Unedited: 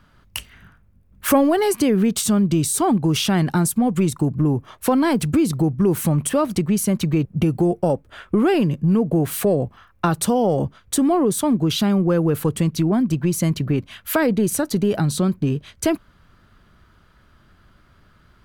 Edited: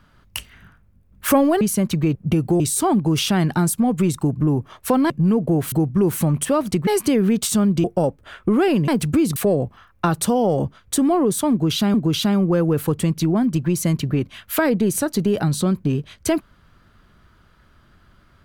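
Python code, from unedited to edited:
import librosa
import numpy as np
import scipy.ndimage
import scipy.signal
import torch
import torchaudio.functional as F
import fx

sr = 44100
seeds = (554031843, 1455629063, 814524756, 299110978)

y = fx.edit(x, sr, fx.swap(start_s=1.61, length_s=0.97, other_s=6.71, other_length_s=0.99),
    fx.swap(start_s=5.08, length_s=0.48, other_s=8.74, other_length_s=0.62),
    fx.repeat(start_s=11.51, length_s=0.43, count=2), tone=tone)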